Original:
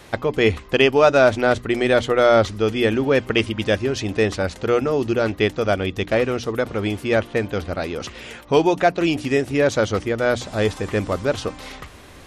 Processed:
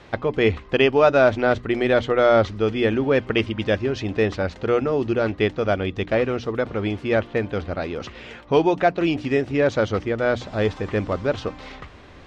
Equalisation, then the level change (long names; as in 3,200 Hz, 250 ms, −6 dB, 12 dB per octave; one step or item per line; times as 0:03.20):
high-frequency loss of the air 150 metres
−1.0 dB